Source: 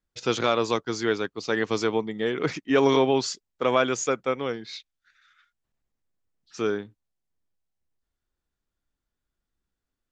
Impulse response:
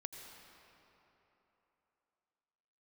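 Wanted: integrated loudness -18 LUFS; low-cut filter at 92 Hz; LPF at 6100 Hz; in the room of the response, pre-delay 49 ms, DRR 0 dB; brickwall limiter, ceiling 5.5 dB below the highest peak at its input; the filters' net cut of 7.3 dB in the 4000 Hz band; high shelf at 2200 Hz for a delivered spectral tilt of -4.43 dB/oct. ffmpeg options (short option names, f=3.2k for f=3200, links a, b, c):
-filter_complex "[0:a]highpass=92,lowpass=6.1k,highshelf=f=2.2k:g=-5,equalizer=f=4k:t=o:g=-4,alimiter=limit=-15dB:level=0:latency=1,asplit=2[a][b];[1:a]atrim=start_sample=2205,adelay=49[c];[b][c]afir=irnorm=-1:irlink=0,volume=3dB[d];[a][d]amix=inputs=2:normalize=0,volume=7dB"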